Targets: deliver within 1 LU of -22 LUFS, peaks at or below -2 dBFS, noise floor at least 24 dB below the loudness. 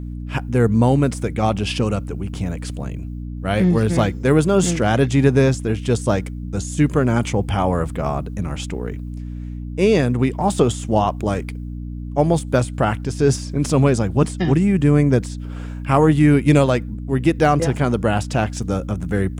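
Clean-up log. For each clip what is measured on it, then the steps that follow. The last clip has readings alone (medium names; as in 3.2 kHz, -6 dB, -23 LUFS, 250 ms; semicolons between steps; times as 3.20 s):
hum 60 Hz; highest harmonic 300 Hz; hum level -26 dBFS; loudness -19.0 LUFS; peak level -3.0 dBFS; loudness target -22.0 LUFS
-> de-hum 60 Hz, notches 5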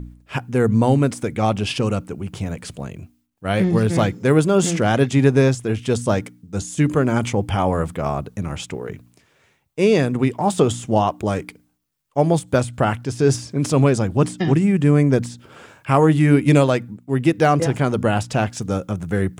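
hum not found; loudness -19.5 LUFS; peak level -3.0 dBFS; loudness target -22.0 LUFS
-> trim -2.5 dB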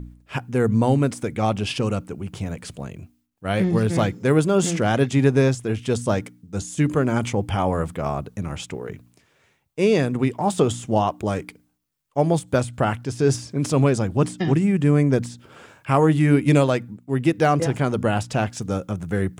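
loudness -22.0 LUFS; peak level -5.5 dBFS; noise floor -64 dBFS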